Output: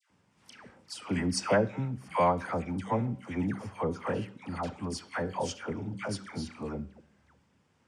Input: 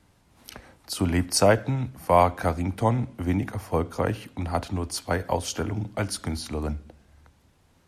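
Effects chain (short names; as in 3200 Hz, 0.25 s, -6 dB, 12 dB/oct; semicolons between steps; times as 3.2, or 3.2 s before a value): speaker cabinet 130–7900 Hz, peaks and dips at 190 Hz +4 dB, 310 Hz -3 dB, 690 Hz -5 dB, 4000 Hz -8 dB, 6400 Hz -4 dB; de-hum 191.9 Hz, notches 32; dispersion lows, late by 0.103 s, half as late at 1100 Hz; gain -4.5 dB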